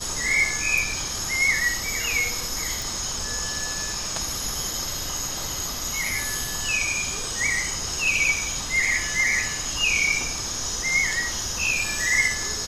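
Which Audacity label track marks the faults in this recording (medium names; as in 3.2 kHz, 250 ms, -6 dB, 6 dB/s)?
2.820000	2.820000	pop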